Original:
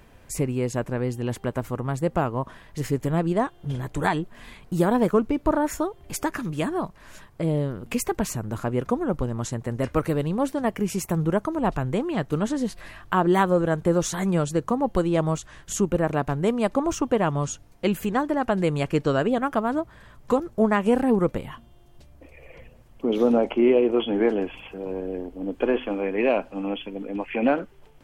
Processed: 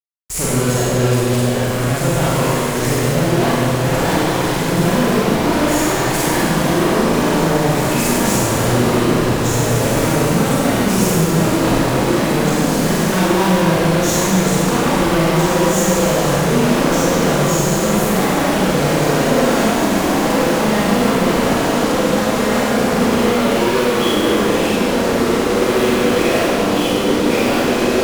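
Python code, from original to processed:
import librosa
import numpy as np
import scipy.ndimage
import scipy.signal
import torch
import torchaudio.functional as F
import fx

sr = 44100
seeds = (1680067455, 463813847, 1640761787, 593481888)

y = fx.echo_diffused(x, sr, ms=1927, feedback_pct=53, wet_db=-7)
y = fx.fuzz(y, sr, gain_db=44.0, gate_db=-38.0)
y = fx.rev_schroeder(y, sr, rt60_s=1.8, comb_ms=33, drr_db=-7.5)
y = y * 10.0 ** (-8.5 / 20.0)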